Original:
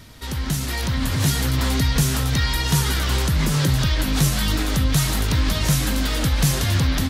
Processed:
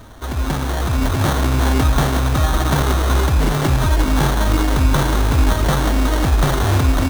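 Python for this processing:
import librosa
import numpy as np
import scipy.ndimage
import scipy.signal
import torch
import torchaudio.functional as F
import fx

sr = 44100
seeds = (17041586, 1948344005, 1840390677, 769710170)

y = x + 0.52 * np.pad(x, (int(2.9 * sr / 1000.0), 0))[:len(x)]
y = fx.sample_hold(y, sr, seeds[0], rate_hz=2500.0, jitter_pct=0)
y = y * 10.0 ** (3.5 / 20.0)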